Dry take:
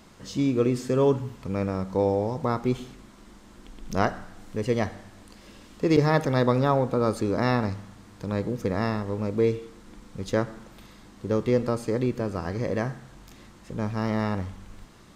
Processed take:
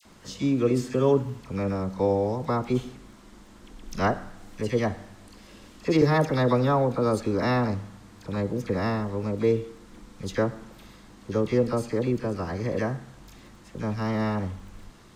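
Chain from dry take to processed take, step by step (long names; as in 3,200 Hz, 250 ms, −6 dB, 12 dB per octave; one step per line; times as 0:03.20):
all-pass dispersion lows, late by 53 ms, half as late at 1,400 Hz
surface crackle 13 per second −47 dBFS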